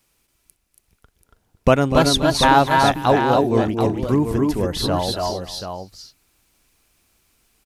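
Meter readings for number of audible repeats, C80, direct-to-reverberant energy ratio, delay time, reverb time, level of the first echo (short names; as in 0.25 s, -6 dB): 4, none, none, 0.246 s, none, -11.5 dB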